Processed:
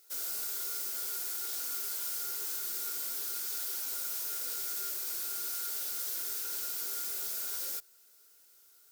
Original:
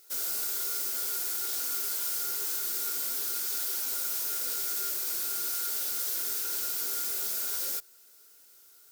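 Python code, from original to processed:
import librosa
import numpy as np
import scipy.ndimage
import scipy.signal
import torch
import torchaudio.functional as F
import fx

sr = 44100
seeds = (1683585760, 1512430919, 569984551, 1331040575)

y = fx.highpass(x, sr, hz=220.0, slope=6)
y = F.gain(torch.from_numpy(y), -4.5).numpy()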